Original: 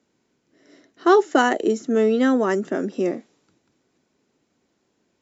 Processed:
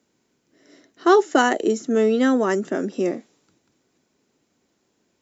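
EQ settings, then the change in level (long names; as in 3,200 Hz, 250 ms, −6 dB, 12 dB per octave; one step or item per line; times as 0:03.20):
high-shelf EQ 6,300 Hz +7 dB
0.0 dB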